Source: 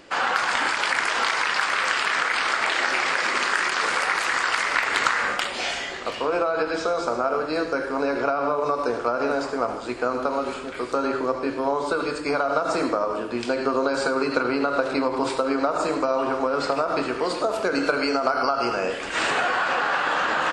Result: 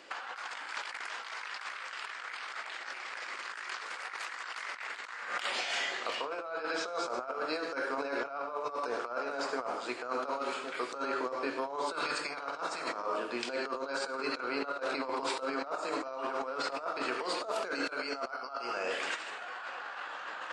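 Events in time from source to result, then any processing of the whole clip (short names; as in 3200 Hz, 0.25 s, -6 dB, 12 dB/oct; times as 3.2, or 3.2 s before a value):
11.93–13.05 spectral limiter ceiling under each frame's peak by 13 dB
whole clip: weighting filter A; negative-ratio compressor -28 dBFS, ratio -0.5; gain -8 dB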